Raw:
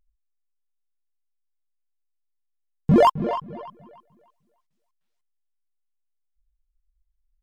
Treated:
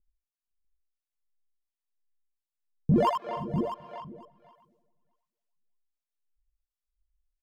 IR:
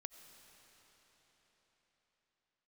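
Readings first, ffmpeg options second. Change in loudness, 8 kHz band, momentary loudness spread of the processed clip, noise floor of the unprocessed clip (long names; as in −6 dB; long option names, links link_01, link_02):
−8.0 dB, can't be measured, 19 LU, −75 dBFS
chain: -filter_complex "[0:a]asplit=2[link_01][link_02];[link_02]aecho=0:1:80|351|475|646:0.398|0.126|0.112|0.422[link_03];[link_01][link_03]amix=inputs=2:normalize=0,acrossover=split=560[link_04][link_05];[link_04]aeval=exprs='val(0)*(1-1/2+1/2*cos(2*PI*1.4*n/s))':channel_layout=same[link_06];[link_05]aeval=exprs='val(0)*(1-1/2-1/2*cos(2*PI*1.4*n/s))':channel_layout=same[link_07];[link_06][link_07]amix=inputs=2:normalize=0,asplit=2[link_08][link_09];[link_09]aecho=0:1:510:0.141[link_10];[link_08][link_10]amix=inputs=2:normalize=0,volume=-4.5dB"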